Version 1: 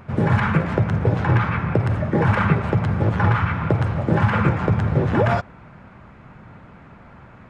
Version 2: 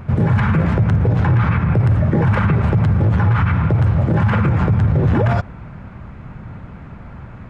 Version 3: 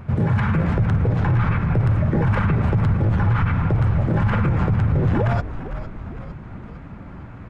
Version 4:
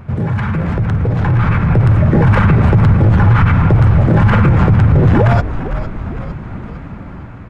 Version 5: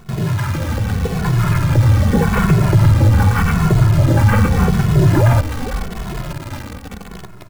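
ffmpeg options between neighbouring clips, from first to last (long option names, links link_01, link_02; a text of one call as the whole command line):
ffmpeg -i in.wav -af "lowshelf=frequency=170:gain=12,alimiter=level_in=10.5dB:limit=-1dB:release=50:level=0:latency=1,volume=-7dB" out.wav
ffmpeg -i in.wav -filter_complex "[0:a]areverse,acompressor=mode=upward:threshold=-30dB:ratio=2.5,areverse,asplit=7[link_01][link_02][link_03][link_04][link_05][link_06][link_07];[link_02]adelay=456,afreqshift=-76,volume=-12dB[link_08];[link_03]adelay=912,afreqshift=-152,volume=-17dB[link_09];[link_04]adelay=1368,afreqshift=-228,volume=-22.1dB[link_10];[link_05]adelay=1824,afreqshift=-304,volume=-27.1dB[link_11];[link_06]adelay=2280,afreqshift=-380,volume=-32.1dB[link_12];[link_07]adelay=2736,afreqshift=-456,volume=-37.2dB[link_13];[link_01][link_08][link_09][link_10][link_11][link_12][link_13]amix=inputs=7:normalize=0,volume=-4dB" out.wav
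ffmpeg -i in.wav -filter_complex "[0:a]asplit=2[link_01][link_02];[link_02]volume=19dB,asoftclip=hard,volume=-19dB,volume=-8dB[link_03];[link_01][link_03]amix=inputs=2:normalize=0,dynaudnorm=framelen=570:gausssize=5:maxgain=11.5dB" out.wav
ffmpeg -i in.wav -filter_complex "[0:a]acrusher=bits=5:dc=4:mix=0:aa=0.000001,asplit=2[link_01][link_02];[link_02]adelay=2.3,afreqshift=-0.84[link_03];[link_01][link_03]amix=inputs=2:normalize=1" out.wav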